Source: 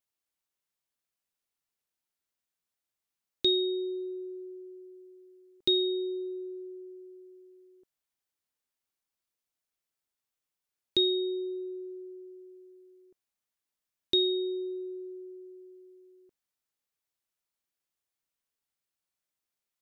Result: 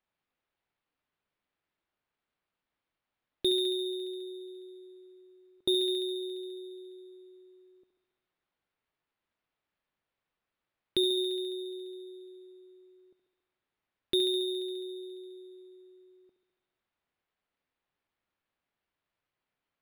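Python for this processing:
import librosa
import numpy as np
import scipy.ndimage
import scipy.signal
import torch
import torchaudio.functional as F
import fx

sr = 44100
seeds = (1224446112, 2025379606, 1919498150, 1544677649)

y = fx.echo_thinned(x, sr, ms=69, feedback_pct=80, hz=260.0, wet_db=-10.0)
y = np.interp(np.arange(len(y)), np.arange(len(y))[::6], y[::6])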